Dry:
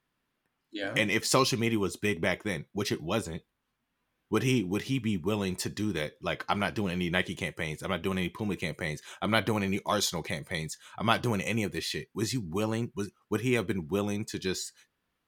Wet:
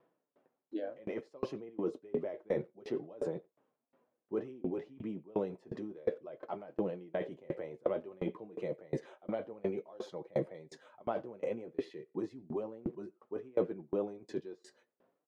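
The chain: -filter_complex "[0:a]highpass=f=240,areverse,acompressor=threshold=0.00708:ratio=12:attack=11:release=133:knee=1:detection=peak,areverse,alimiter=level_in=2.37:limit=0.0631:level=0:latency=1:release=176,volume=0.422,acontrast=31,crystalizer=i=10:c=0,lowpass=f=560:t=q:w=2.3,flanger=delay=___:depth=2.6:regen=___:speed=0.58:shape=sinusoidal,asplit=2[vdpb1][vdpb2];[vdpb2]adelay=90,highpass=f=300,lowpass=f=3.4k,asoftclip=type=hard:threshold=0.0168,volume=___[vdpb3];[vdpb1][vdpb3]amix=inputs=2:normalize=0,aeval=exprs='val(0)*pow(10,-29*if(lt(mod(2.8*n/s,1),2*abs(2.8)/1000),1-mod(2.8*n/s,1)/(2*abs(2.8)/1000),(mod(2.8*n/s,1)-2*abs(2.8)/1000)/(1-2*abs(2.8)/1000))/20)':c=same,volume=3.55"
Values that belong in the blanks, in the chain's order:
6.1, -45, 0.126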